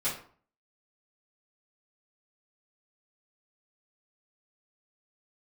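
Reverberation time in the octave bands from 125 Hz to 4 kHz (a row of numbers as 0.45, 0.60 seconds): 0.55, 0.50, 0.45, 0.50, 0.40, 0.30 seconds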